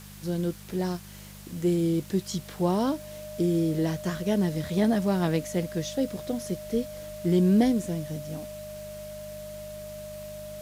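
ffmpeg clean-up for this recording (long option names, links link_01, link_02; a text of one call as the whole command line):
ffmpeg -i in.wav -af "adeclick=threshold=4,bandreject=frequency=50.4:width_type=h:width=4,bandreject=frequency=100.8:width_type=h:width=4,bandreject=frequency=151.2:width_type=h:width=4,bandreject=frequency=201.6:width_type=h:width=4,bandreject=frequency=610:width=30,afwtdn=0.0035" out.wav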